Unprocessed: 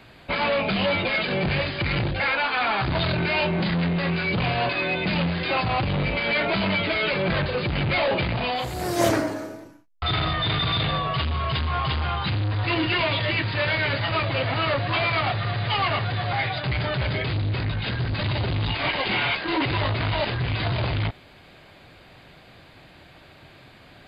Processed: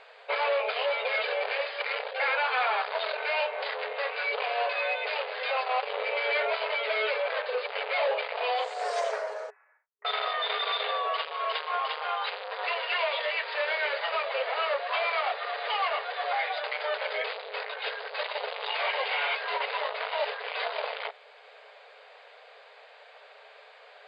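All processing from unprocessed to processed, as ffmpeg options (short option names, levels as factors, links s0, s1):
-filter_complex "[0:a]asettb=1/sr,asplit=3[s0][s1][s2];[s0]atrim=end=9.504[s3];[s1]atrim=start=9.5:end=10.05,asetpts=PTS-STARTPTS,afade=t=in:d=0.004:c=qsin,afade=t=out:st=0.546:d=0.004:c=qsin,highpass=f=1400:w=0.5412,highpass=f=1400:w=1.3066,acompressor=threshold=0.00141:ratio=4:attack=3.2:release=140:knee=1:detection=peak,lowpass=f=2700:t=q:w=0.5098,lowpass=f=2700:t=q:w=0.6013,lowpass=f=2700:t=q:w=0.9,lowpass=f=2700:t=q:w=2.563,afreqshift=-3200[s4];[s2]atrim=start=10.046[s5];[s3][s4]acrossfade=d=0.004:c1=hsin:c2=qsin[s6];[s6][s5]acrossfade=d=0.004:c1=qsin:c2=hsin,afftfilt=real='re*between(b*sr/4096,410,9400)':imag='im*between(b*sr/4096,410,9400)':win_size=4096:overlap=0.75,aemphasis=mode=reproduction:type=bsi,alimiter=limit=0.1:level=0:latency=1:release=417"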